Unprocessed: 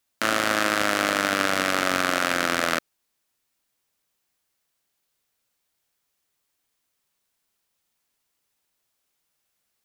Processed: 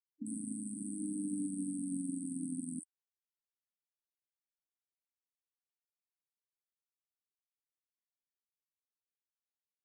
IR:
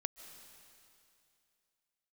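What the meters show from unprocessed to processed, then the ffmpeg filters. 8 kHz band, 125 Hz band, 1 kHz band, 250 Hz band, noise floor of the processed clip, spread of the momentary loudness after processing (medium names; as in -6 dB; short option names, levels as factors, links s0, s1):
-11.5 dB, -9.0 dB, under -40 dB, -6.0 dB, under -85 dBFS, 6 LU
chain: -filter_complex "[0:a]afftfilt=real='re*(1-between(b*sr/4096,310,8000))':imag='im*(1-between(b*sr/4096,310,8000))':win_size=4096:overlap=0.75,highpass=f=180:w=0.5412,highpass=f=180:w=1.3066,acrossover=split=830|4900[s0][s1][s2];[s2]adelay=50[s3];[s1]adelay=230[s4];[s0][s4][s3]amix=inputs=3:normalize=0,afftfilt=real='re*gte(hypot(re,im),0.00631)':imag='im*gte(hypot(re,im),0.00631)':win_size=1024:overlap=0.75,volume=0.668" -ar 22050 -c:a libmp3lame -b:a 40k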